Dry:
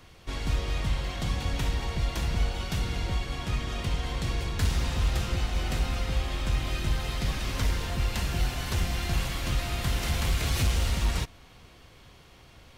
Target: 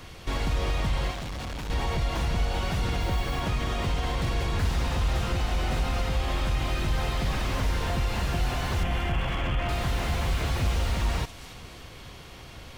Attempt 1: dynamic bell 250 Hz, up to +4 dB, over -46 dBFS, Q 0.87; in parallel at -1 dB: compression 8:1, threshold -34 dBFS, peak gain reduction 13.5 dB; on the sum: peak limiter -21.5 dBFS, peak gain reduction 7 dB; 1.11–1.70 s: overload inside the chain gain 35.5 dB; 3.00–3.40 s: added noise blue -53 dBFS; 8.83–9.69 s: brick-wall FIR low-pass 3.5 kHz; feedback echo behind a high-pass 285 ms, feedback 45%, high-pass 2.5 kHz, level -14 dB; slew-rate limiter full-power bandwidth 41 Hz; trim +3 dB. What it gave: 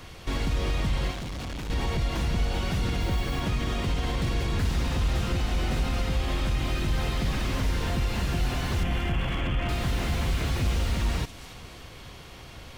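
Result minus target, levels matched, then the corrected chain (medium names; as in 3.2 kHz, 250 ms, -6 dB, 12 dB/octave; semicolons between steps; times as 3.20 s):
1 kHz band -3.0 dB
dynamic bell 790 Hz, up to +4 dB, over -46 dBFS, Q 0.87; in parallel at -1 dB: compression 8:1, threshold -34 dBFS, peak gain reduction 13 dB; on the sum: peak limiter -21.5 dBFS, peak gain reduction 6.5 dB; 1.11–1.70 s: overload inside the chain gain 35.5 dB; 3.00–3.40 s: added noise blue -53 dBFS; 8.83–9.69 s: brick-wall FIR low-pass 3.5 kHz; feedback echo behind a high-pass 285 ms, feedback 45%, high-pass 2.5 kHz, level -14 dB; slew-rate limiter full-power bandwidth 41 Hz; trim +3 dB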